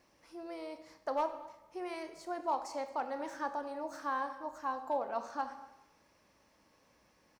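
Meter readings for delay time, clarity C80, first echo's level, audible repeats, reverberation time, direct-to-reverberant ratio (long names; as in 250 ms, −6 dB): 230 ms, 12.0 dB, −22.5 dB, 1, 0.95 s, 8.0 dB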